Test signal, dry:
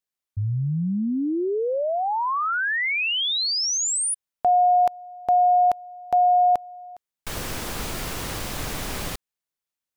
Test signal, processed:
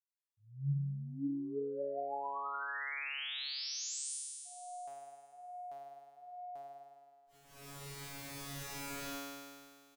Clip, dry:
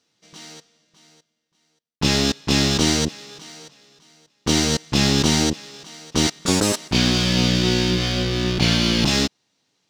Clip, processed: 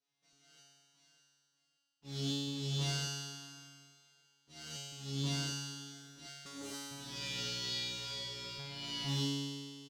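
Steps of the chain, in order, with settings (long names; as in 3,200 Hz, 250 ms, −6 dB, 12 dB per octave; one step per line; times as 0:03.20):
volume swells 302 ms
harmonic generator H 7 −42 dB, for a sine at −5.5 dBFS
speech leveller within 4 dB 2 s
tuned comb filter 140 Hz, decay 2 s, mix 100%
repeating echo 288 ms, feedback 42%, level −22 dB
level +4 dB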